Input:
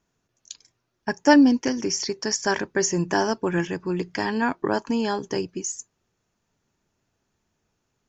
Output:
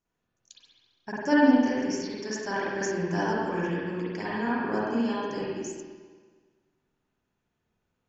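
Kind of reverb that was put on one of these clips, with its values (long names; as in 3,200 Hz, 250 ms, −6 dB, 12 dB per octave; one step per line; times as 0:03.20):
spring reverb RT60 1.5 s, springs 47/51 ms, chirp 20 ms, DRR −8.5 dB
level −13 dB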